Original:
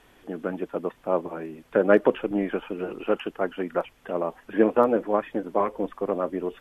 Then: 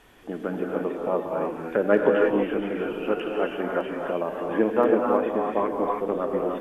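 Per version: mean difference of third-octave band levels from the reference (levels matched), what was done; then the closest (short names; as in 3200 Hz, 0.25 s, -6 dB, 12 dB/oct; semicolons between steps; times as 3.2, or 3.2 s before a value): 5.0 dB: in parallel at 0 dB: compressor, threshold -29 dBFS, peak gain reduction 16 dB; on the sum: non-linear reverb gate 0.35 s rising, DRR -0.5 dB; gain -4.5 dB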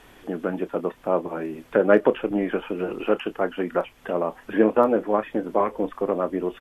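1.5 dB: in parallel at 0 dB: compressor, threshold -33 dBFS, peak gain reduction 19.5 dB; on the sum: doubler 28 ms -14 dB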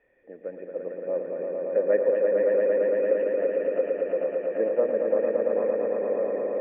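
8.0 dB: vocal tract filter e; swelling echo 0.113 s, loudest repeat 5, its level -4 dB; gain +1.5 dB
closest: second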